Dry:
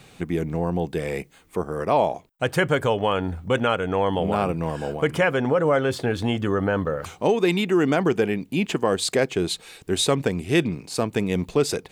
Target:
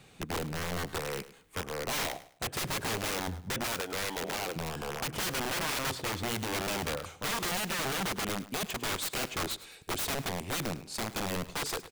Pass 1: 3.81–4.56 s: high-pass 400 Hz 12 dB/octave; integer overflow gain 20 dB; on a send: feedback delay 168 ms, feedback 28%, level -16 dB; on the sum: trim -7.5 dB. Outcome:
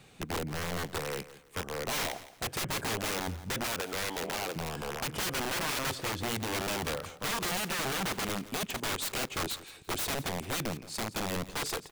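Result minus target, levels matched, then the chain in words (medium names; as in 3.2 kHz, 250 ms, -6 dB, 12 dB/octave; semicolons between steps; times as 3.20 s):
echo 64 ms late
3.81–4.56 s: high-pass 400 Hz 12 dB/octave; integer overflow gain 20 dB; on a send: feedback delay 104 ms, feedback 28%, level -16 dB; on the sum: trim -7.5 dB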